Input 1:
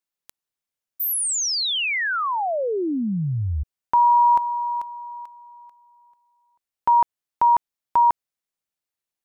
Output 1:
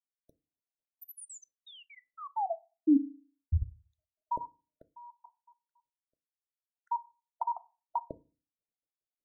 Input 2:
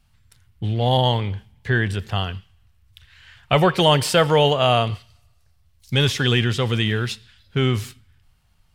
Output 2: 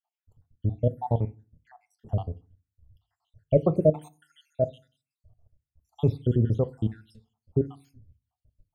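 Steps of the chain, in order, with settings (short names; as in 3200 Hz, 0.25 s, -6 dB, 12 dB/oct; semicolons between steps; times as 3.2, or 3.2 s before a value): random spectral dropouts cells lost 75%; EQ curve 680 Hz 0 dB, 1600 Hz -28 dB, 2700 Hz -29 dB, 8500 Hz -22 dB; FDN reverb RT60 0.33 s, low-frequency decay 1.35×, high-frequency decay 0.6×, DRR 13 dB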